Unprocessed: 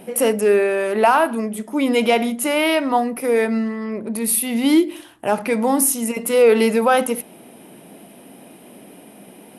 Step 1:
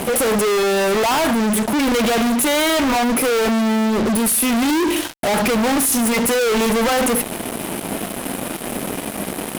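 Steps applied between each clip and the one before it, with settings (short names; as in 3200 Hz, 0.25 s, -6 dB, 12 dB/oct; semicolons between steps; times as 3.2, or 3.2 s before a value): fuzz box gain 42 dB, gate -43 dBFS; gain -3 dB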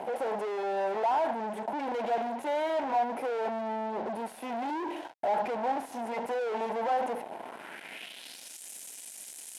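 band-pass sweep 800 Hz -> 7100 Hz, 7.34–8.58; bell 1200 Hz -12 dB 0.21 oct; gain -5 dB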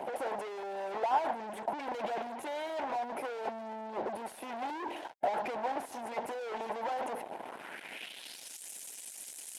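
harmonic-percussive split harmonic -11 dB; gain +2.5 dB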